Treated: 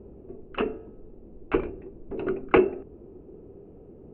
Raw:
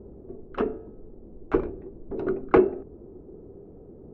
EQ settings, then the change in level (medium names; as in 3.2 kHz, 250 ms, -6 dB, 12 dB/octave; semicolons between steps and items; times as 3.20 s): resonant low-pass 2.7 kHz, resonance Q 5.1; -1.5 dB